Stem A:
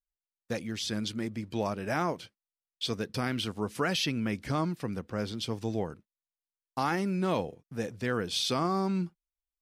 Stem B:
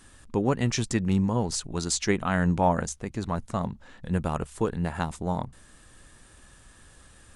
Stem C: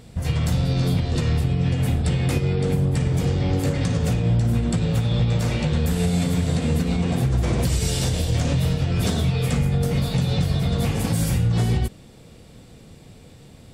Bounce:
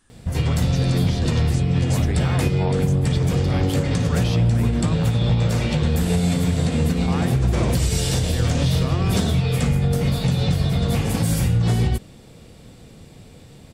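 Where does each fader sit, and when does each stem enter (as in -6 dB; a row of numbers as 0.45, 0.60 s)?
-3.0, -8.5, +1.5 dB; 0.30, 0.00, 0.10 s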